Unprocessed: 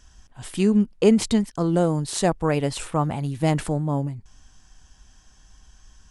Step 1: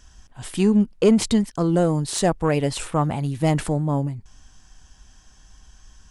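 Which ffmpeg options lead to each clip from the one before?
-af "acontrast=86,volume=-5dB"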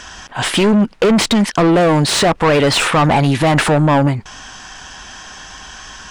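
-filter_complex "[0:a]asplit=2[a][b];[b]highpass=f=720:p=1,volume=28dB,asoftclip=type=tanh:threshold=-7dB[c];[a][c]amix=inputs=2:normalize=0,lowpass=f=1.6k:p=1,volume=-6dB,equalizer=f=3.1k:t=o:w=2.9:g=5,alimiter=level_in=11dB:limit=-1dB:release=50:level=0:latency=1,volume=-6dB"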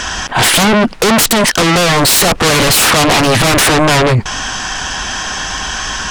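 -af "aeval=exprs='0.473*sin(PI/2*3.55*val(0)/0.473)':c=same"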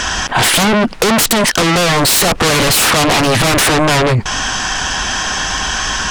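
-af "acompressor=threshold=-12dB:ratio=6,volume=2dB"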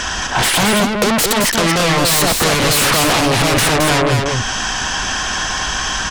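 -af "aecho=1:1:219:0.631,volume=-3.5dB"

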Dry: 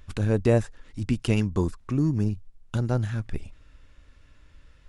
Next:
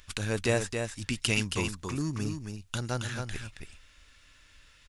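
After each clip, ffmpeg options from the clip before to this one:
-af "tiltshelf=f=1.2k:g=-9.5,aecho=1:1:273:0.501"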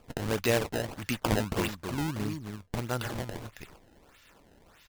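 -af "lowshelf=f=76:g=-11,acrusher=samples=22:mix=1:aa=0.000001:lfo=1:lforange=35.2:lforate=1.6,volume=1.5dB"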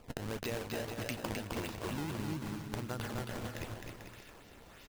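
-filter_complex "[0:a]acompressor=threshold=-38dB:ratio=6,asplit=2[a][b];[b]aecho=0:1:260|442|569.4|658.6|721:0.631|0.398|0.251|0.158|0.1[c];[a][c]amix=inputs=2:normalize=0,volume=1dB"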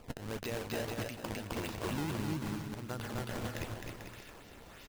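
-af "alimiter=level_in=4dB:limit=-24dB:level=0:latency=1:release=280,volume=-4dB,volume=2.5dB"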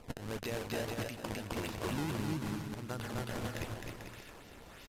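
-af "aresample=32000,aresample=44100"

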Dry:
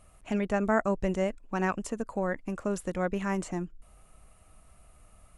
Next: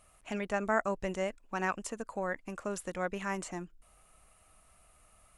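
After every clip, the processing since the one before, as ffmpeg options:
-af "lowshelf=f=490:g=-10"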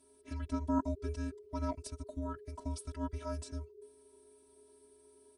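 -af "afftfilt=real='hypot(re,im)*cos(PI*b)':imag='0':win_size=512:overlap=0.75,aecho=1:1:2.7:0.91,afreqshift=-420,volume=-3dB"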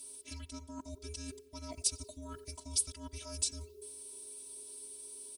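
-filter_complex "[0:a]areverse,acompressor=threshold=-43dB:ratio=10,areverse,aexciter=amount=8.7:drive=2.6:freq=2.4k,asplit=2[a][b];[b]adelay=90,lowpass=f=4.1k:p=1,volume=-19dB,asplit=2[c][d];[d]adelay=90,lowpass=f=4.1k:p=1,volume=0.53,asplit=2[e][f];[f]adelay=90,lowpass=f=4.1k:p=1,volume=0.53,asplit=2[g][h];[h]adelay=90,lowpass=f=4.1k:p=1,volume=0.53[i];[a][c][e][g][i]amix=inputs=5:normalize=0,volume=1dB"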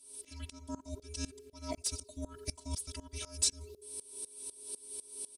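-af "asoftclip=type=tanh:threshold=-20dB,aresample=32000,aresample=44100,aeval=exprs='val(0)*pow(10,-22*if(lt(mod(-4*n/s,1),2*abs(-4)/1000),1-mod(-4*n/s,1)/(2*abs(-4)/1000),(mod(-4*n/s,1)-2*abs(-4)/1000)/(1-2*abs(-4)/1000))/20)':c=same,volume=10dB"

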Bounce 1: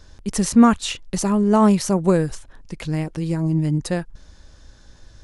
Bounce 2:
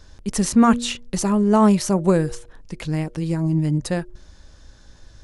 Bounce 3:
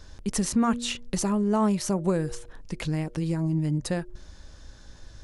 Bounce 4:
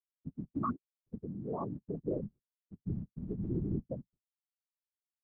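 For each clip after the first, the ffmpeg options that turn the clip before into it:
-af "bandreject=f=119.4:t=h:w=4,bandreject=f=238.8:t=h:w=4,bandreject=f=358.2:t=h:w=4,bandreject=f=477.6:t=h:w=4,bandreject=f=597:t=h:w=4"
-af "acompressor=threshold=-27dB:ratio=2"
-af "afftfilt=real='re*gte(hypot(re,im),0.316)':imag='im*gte(hypot(re,im),0.316)':win_size=1024:overlap=0.75,highpass=130,equalizer=f=140:t=q:w=4:g=6,equalizer=f=210:t=q:w=4:g=-8,equalizer=f=320:t=q:w=4:g=7,equalizer=f=810:t=q:w=4:g=-3,equalizer=f=1.3k:t=q:w=4:g=9,equalizer=f=2.1k:t=q:w=4:g=-6,lowpass=f=3.3k:w=0.5412,lowpass=f=3.3k:w=1.3066,afftfilt=real='hypot(re,im)*cos(2*PI*random(0))':imag='hypot(re,im)*sin(2*PI*random(1))':win_size=512:overlap=0.75,volume=-3dB"

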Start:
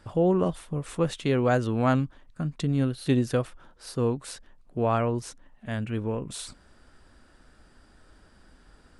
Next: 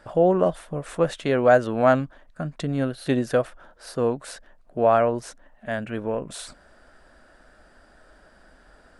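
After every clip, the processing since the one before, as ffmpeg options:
-af "equalizer=f=100:t=o:w=0.67:g=-8,equalizer=f=630:t=o:w=0.67:g=11,equalizer=f=1.6k:t=o:w=0.67:g=7"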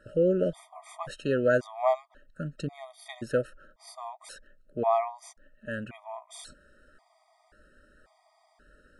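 -af "afftfilt=real='re*gt(sin(2*PI*0.93*pts/sr)*(1-2*mod(floor(b*sr/1024/630),2)),0)':imag='im*gt(sin(2*PI*0.93*pts/sr)*(1-2*mod(floor(b*sr/1024/630),2)),0)':win_size=1024:overlap=0.75,volume=-4.5dB"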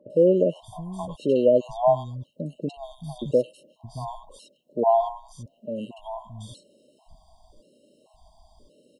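-filter_complex "[0:a]acrossover=split=2900[a][b];[b]acompressor=threshold=-57dB:ratio=4:attack=1:release=60[c];[a][c]amix=inputs=2:normalize=0,acrossover=split=150|1300[d][e][f];[f]adelay=100[g];[d]adelay=620[h];[h][e][g]amix=inputs=3:normalize=0,afftfilt=real='re*(1-between(b*sr/4096,1100,2700))':imag='im*(1-between(b*sr/4096,1100,2700))':win_size=4096:overlap=0.75,volume=6.5dB"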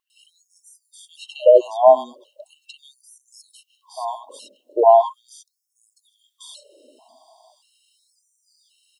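-af "afftfilt=real='re*gte(b*sr/1024,210*pow(5300/210,0.5+0.5*sin(2*PI*0.39*pts/sr)))':imag='im*gte(b*sr/1024,210*pow(5300/210,0.5+0.5*sin(2*PI*0.39*pts/sr)))':win_size=1024:overlap=0.75,volume=8dB"

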